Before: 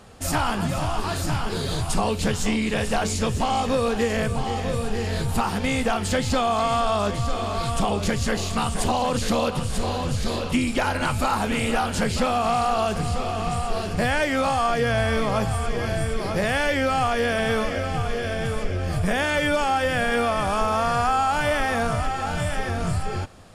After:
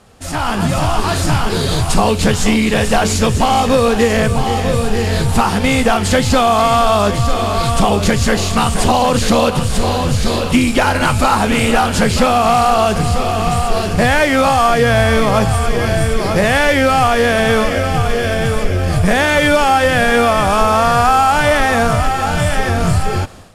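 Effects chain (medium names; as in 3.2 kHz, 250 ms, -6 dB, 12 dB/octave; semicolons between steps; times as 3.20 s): CVSD coder 64 kbps; level rider gain up to 12.5 dB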